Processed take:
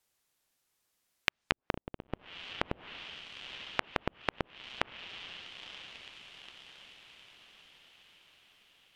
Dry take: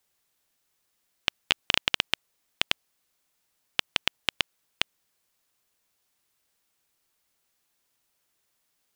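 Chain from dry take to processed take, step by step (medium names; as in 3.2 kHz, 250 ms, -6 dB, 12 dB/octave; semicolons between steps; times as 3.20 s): on a send: echo that smears into a reverb 961 ms, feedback 53%, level -12.5 dB; on the sum: low-pass that closes with the level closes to 450 Hz, closed at -28.5 dBFS; trim -2.5 dB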